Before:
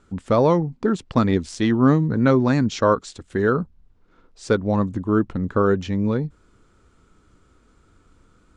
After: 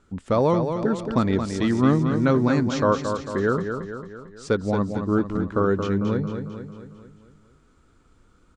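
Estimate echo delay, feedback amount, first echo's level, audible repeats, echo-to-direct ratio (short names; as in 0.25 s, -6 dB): 0.224 s, 53%, -7.0 dB, 6, -5.5 dB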